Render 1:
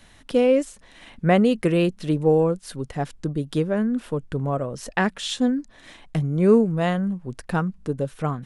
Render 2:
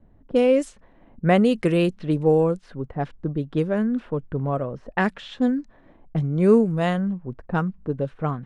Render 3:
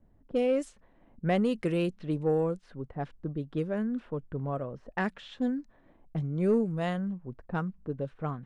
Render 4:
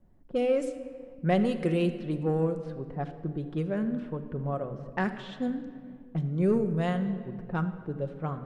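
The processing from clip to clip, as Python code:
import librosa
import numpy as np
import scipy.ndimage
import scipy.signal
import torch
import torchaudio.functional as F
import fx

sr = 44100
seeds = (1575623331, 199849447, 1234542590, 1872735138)

y1 = fx.env_lowpass(x, sr, base_hz=450.0, full_db=-16.5)
y2 = 10.0 ** (-8.0 / 20.0) * np.tanh(y1 / 10.0 ** (-8.0 / 20.0))
y2 = y2 * librosa.db_to_amplitude(-8.0)
y3 = fx.room_shoebox(y2, sr, seeds[0], volume_m3=4000.0, walls='mixed', distance_m=0.97)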